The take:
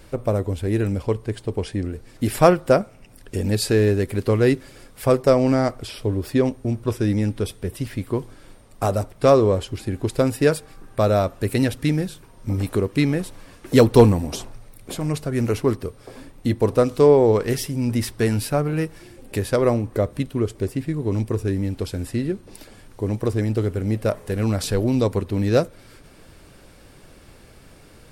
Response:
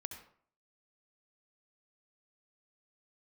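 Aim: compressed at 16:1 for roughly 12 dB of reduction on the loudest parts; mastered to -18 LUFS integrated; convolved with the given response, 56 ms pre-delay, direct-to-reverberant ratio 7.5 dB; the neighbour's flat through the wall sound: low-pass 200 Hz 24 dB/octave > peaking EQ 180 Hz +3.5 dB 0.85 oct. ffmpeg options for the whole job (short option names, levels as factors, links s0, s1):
-filter_complex "[0:a]acompressor=threshold=0.112:ratio=16,asplit=2[s0][s1];[1:a]atrim=start_sample=2205,adelay=56[s2];[s1][s2]afir=irnorm=-1:irlink=0,volume=0.562[s3];[s0][s3]amix=inputs=2:normalize=0,lowpass=f=200:w=0.5412,lowpass=f=200:w=1.3066,equalizer=f=180:t=o:w=0.85:g=3.5,volume=3.55"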